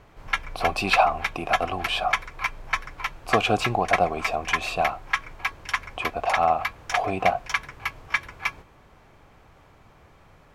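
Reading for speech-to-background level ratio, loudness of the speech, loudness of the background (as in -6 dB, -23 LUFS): 3.5 dB, -25.5 LUFS, -29.0 LUFS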